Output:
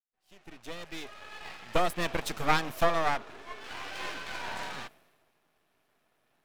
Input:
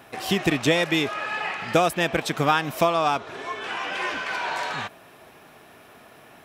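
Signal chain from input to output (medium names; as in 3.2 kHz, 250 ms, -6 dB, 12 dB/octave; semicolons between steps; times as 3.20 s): fade-in on the opening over 2.09 s; half-wave rectifier; three bands expanded up and down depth 70%; trim -4 dB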